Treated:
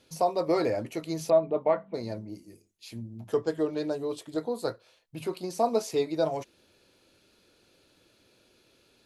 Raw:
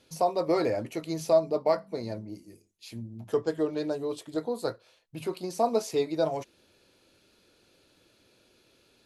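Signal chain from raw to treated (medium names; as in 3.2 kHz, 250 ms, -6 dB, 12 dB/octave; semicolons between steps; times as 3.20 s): 1.30–1.94 s: steep low-pass 3.6 kHz 72 dB/octave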